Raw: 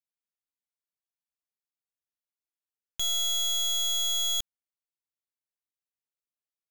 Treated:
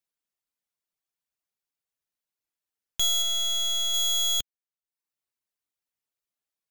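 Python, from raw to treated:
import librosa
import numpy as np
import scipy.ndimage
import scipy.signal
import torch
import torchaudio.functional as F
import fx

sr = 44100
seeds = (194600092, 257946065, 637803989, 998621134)

y = fx.dereverb_blind(x, sr, rt60_s=0.63)
y = fx.high_shelf(y, sr, hz=7300.0, db=-7.0, at=(3.22, 3.94))
y = y * 10.0 ** (5.0 / 20.0)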